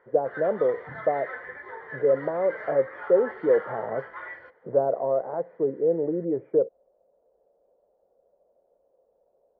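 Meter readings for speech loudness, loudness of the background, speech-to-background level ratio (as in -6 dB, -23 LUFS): -26.0 LUFS, -39.0 LUFS, 13.0 dB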